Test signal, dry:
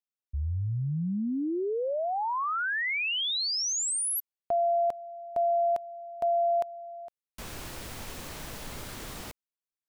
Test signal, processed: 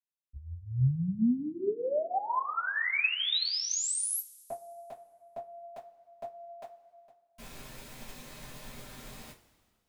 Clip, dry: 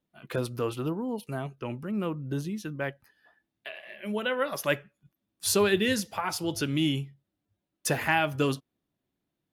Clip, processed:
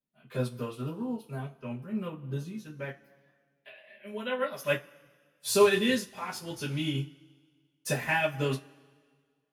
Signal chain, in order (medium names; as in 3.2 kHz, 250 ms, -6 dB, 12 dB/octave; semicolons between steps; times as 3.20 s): two-slope reverb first 0.2 s, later 1.8 s, from -22 dB, DRR -8.5 dB; upward expansion 1.5:1, over -31 dBFS; trim -7.5 dB